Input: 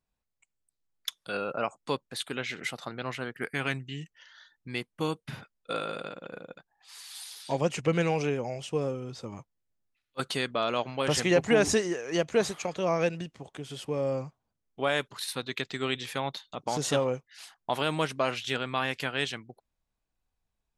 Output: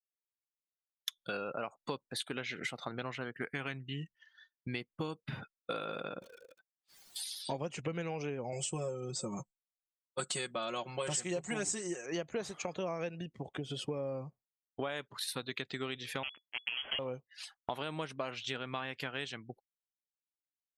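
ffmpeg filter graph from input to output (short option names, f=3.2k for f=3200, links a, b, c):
-filter_complex "[0:a]asettb=1/sr,asplit=3[a][b][c];[a]atrim=end=6.224[d];[b]atrim=start=6.22:end=7.16,asetpts=PTS-STARTPTS,afade=t=in:d=0.004:c=qsin,afade=t=out:st=0.936:d=0.004:c=qsin,highpass=f=760:p=1,aeval=exprs='(mod(168*val(0)+1,2)-1)/168':c=same[e];[c]atrim=start=7.156[f];[d][e]acrossfade=d=0.004:c1=hsin:c2=qsin[g];[g][f]acrossfade=d=0.004:c1=qsin:c2=hsin,asettb=1/sr,asplit=3[h][i][j];[h]atrim=end=8.524[k];[i]atrim=start=8.52:end=12.06,asetpts=PTS-STARTPTS,afade=t=in:d=0.004:c=qsin,afade=t=out:st=3.536:d=0.004:c=qsin,lowpass=f=7.9k:t=q:w=11,aecho=1:1:5.5:0.82,atrim=end_sample=156114[l];[j]atrim=start=12.056[m];[k][l]acrossfade=d=0.004:c1=hsin:c2=qsin[n];[n][m]acrossfade=d=0.004:c1=qsin:c2=hsin,asettb=1/sr,asplit=3[o][p][q];[o]atrim=end=16.234[r];[p]atrim=start=16.23:end=16.99,asetpts=PTS-STARTPTS,afade=t=in:d=0.004:c=qsin,afade=t=out:st=0.756:d=0.004:c=qsin,acrusher=bits=4:mix=0:aa=0.5,lowpass=f=2.9k:t=q:w=0.5098,lowpass=f=2.9k:t=q:w=0.6013,lowpass=f=2.9k:t=q:w=0.9,lowpass=f=2.9k:t=q:w=2.563,afreqshift=-3400[s];[q]atrim=start=16.986[t];[r][s]acrossfade=d=0.004:c1=hsin:c2=qsin[u];[u][t]acrossfade=d=0.004:c1=qsin:c2=hsin,agate=range=-33dB:threshold=-49dB:ratio=3:detection=peak,afftdn=nr=18:nf=-49,acompressor=threshold=-40dB:ratio=6,volume=4.5dB"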